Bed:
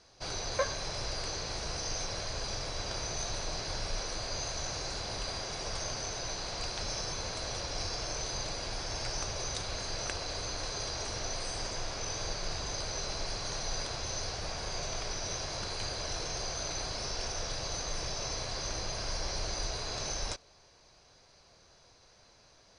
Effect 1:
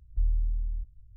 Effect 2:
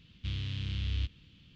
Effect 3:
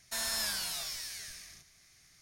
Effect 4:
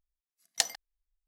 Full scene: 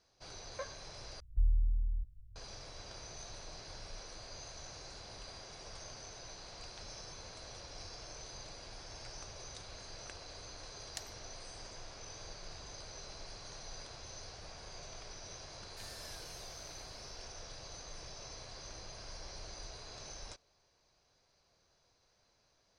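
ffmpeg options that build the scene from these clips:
-filter_complex "[0:a]volume=0.237[s0];[3:a]highshelf=f=11000:g=-7[s1];[s0]asplit=2[s2][s3];[s2]atrim=end=1.204[s4];[1:a]atrim=end=1.16,asetpts=PTS-STARTPTS,volume=0.708[s5];[s3]atrim=start=2.356[s6];[4:a]atrim=end=1.27,asetpts=PTS-STARTPTS,volume=0.126,afade=t=in:d=0.004:c=hsin,afade=t=out:st=1.266:d=0.004:c=hsin,adelay=10370[s7];[s1]atrim=end=2.21,asetpts=PTS-STARTPTS,volume=0.133,afade=t=in:d=0.004:c=hsin,afade=t=out:st=2.206:d=0.004:c=hsin,adelay=15650[s8];[s4][s5]acrossfade=d=0.004:c1=hsin:c2=hsin[s9];[s9][s6]acrossfade=d=0.004:c1=hsin:c2=hsin[s10];[s10][s7][s8]amix=inputs=3:normalize=0"

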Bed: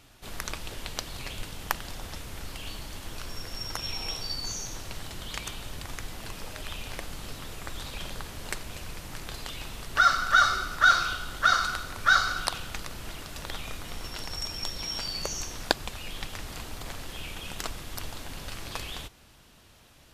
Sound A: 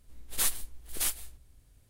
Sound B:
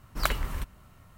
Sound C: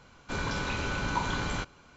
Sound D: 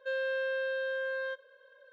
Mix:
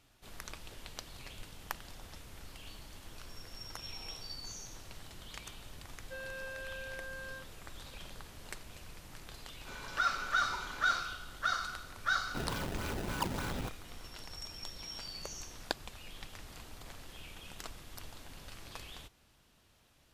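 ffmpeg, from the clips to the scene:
-filter_complex "[3:a]asplit=2[s0][s1];[0:a]volume=0.282[s2];[4:a]asplit=2[s3][s4];[s4]adelay=31,volume=0.631[s5];[s3][s5]amix=inputs=2:normalize=0[s6];[s0]highpass=f=630:p=1[s7];[s1]acrusher=samples=23:mix=1:aa=0.000001:lfo=1:lforange=36.8:lforate=3.4[s8];[s6]atrim=end=1.92,asetpts=PTS-STARTPTS,volume=0.299,afade=t=in:d=0.004:c=hsin,afade=t=out:st=1.916:d=0.004:c=hsin,adelay=6050[s9];[s7]atrim=end=1.96,asetpts=PTS-STARTPTS,volume=0.266,afade=t=in:d=0.004:c=hsin,afade=t=out:st=1.956:d=0.004:c=hsin,adelay=9370[s10];[s8]atrim=end=1.96,asetpts=PTS-STARTPTS,volume=0.501,afade=t=in:d=0.004:c=hsin,afade=t=out:st=1.956:d=0.004:c=hsin,adelay=12050[s11];[s2][s9][s10][s11]amix=inputs=4:normalize=0"

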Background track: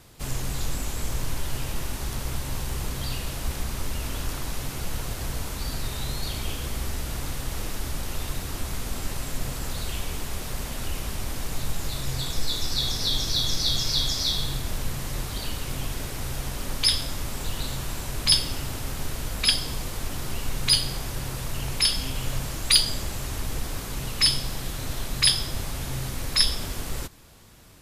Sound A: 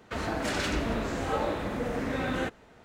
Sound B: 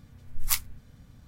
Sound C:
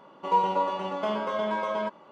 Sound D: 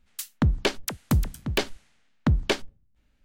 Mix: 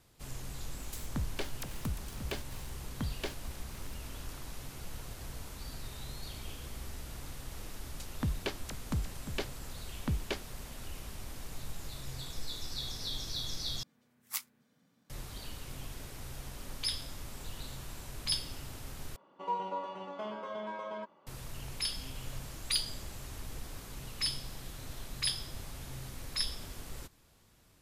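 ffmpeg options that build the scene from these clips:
-filter_complex "[4:a]asplit=2[s0][s1];[0:a]volume=0.224[s2];[s0]aeval=exprs='val(0)+0.5*0.0282*sgn(val(0))':c=same[s3];[s1]lowpass=7800[s4];[2:a]highpass=f=190:w=0.5412,highpass=f=190:w=1.3066[s5];[s2]asplit=3[s6][s7][s8];[s6]atrim=end=13.834[s9];[s5]atrim=end=1.27,asetpts=PTS-STARTPTS,volume=0.299[s10];[s7]atrim=start=15.096:end=19.164[s11];[3:a]atrim=end=2.11,asetpts=PTS-STARTPTS,volume=0.266[s12];[s8]atrim=start=21.266[s13];[s3]atrim=end=3.24,asetpts=PTS-STARTPTS,volume=0.168,afade=t=in:d=0.004:c=hsin,afade=t=out:st=3.236:d=0.004:c=hsin,adelay=740[s14];[s4]atrim=end=3.24,asetpts=PTS-STARTPTS,volume=0.251,afade=t=in:d=0.004:c=hsin,afade=t=out:st=3.236:d=0.004:c=hsin,adelay=7810[s15];[s9][s10]acrossfade=d=0.004:c1=hsin:c2=hsin[s16];[s16][s11]acrossfade=d=0.004:c1=hsin:c2=hsin[s17];[s17][s12]acrossfade=d=0.004:c1=hsin:c2=hsin[s18];[s18][s13]acrossfade=d=0.004:c1=hsin:c2=hsin[s19];[s19][s14][s15]amix=inputs=3:normalize=0"

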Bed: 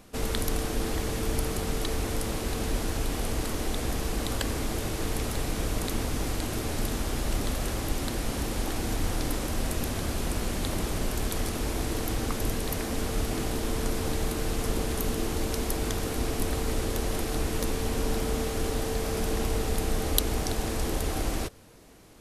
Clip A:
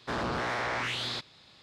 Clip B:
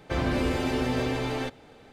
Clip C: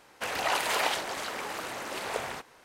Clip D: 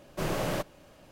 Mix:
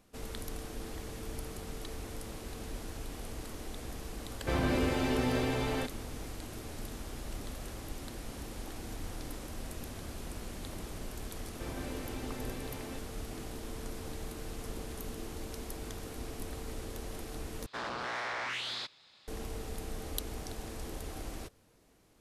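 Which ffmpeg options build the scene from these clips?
-filter_complex "[2:a]asplit=2[s0][s1];[0:a]volume=0.237[s2];[1:a]lowshelf=f=380:g=-11.5[s3];[s2]asplit=2[s4][s5];[s4]atrim=end=17.664[s6];[s3]atrim=end=1.62,asetpts=PTS-STARTPTS,volume=0.668[s7];[s5]atrim=start=19.276[s8];[s0]atrim=end=1.92,asetpts=PTS-STARTPTS,volume=0.668,afade=t=in:d=0.004:c=hsin,afade=t=out:st=1.916:d=0.004:c=hsin,adelay=192717S[s9];[s1]atrim=end=1.92,asetpts=PTS-STARTPTS,volume=0.158,afade=t=in:d=0.004:c=hsin,afade=t=out:st=1.916:d=0.004:c=hsin,adelay=11500[s10];[s6][s7]acrossfade=d=0.004:c1=hsin:c2=hsin[s11];[s11][s8]acrossfade=d=0.004:c1=hsin:c2=hsin[s12];[s12][s9][s10]amix=inputs=3:normalize=0"

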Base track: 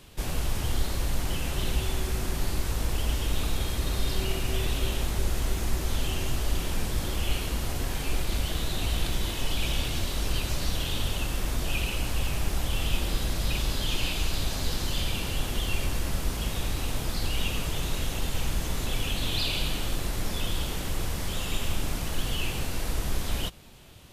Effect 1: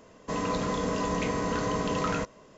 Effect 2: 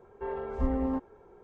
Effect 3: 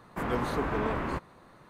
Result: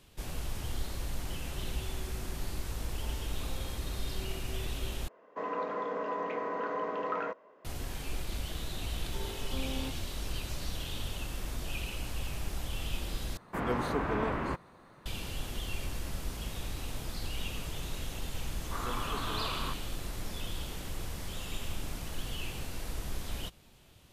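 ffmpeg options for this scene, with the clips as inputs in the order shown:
-filter_complex "[2:a]asplit=2[s0][s1];[3:a]asplit=2[s2][s3];[0:a]volume=0.376[s4];[s0]highpass=560[s5];[1:a]asuperpass=centerf=850:order=4:qfactor=0.57[s6];[s3]equalizer=f=1200:w=2.2:g=12[s7];[s4]asplit=3[s8][s9][s10];[s8]atrim=end=5.084[s11];[s6]atrim=end=2.57,asetpts=PTS-STARTPTS,volume=0.708[s12];[s9]atrim=start=7.646:end=13.374[s13];[s2]atrim=end=1.69,asetpts=PTS-STARTPTS,volume=0.841[s14];[s10]atrim=start=15.056[s15];[s5]atrim=end=1.43,asetpts=PTS-STARTPTS,volume=0.2,afade=t=in:d=0.004:c=hsin,afade=t=out:st=1.426:d=0.004:c=hsin,adelay=2800[s16];[s1]atrim=end=1.43,asetpts=PTS-STARTPTS,volume=0.316,afade=t=in:d=0.004:c=hsin,afade=t=out:st=1.426:d=0.004:c=hsin,adelay=8920[s17];[s7]atrim=end=1.69,asetpts=PTS-STARTPTS,volume=0.251,afade=t=in:d=0.004:c=hsin,afade=t=out:st=1.686:d=0.004:c=hsin,adelay=18550[s18];[s11][s12]acrossfade=d=0.004:c1=hsin:c2=hsin[s19];[s19][s13]acrossfade=d=0.004:c1=hsin:c2=hsin[s20];[s20][s14]acrossfade=d=0.004:c1=hsin:c2=hsin[s21];[s21][s15]acrossfade=d=0.004:c1=hsin:c2=hsin[s22];[s22][s16][s17][s18]amix=inputs=4:normalize=0"

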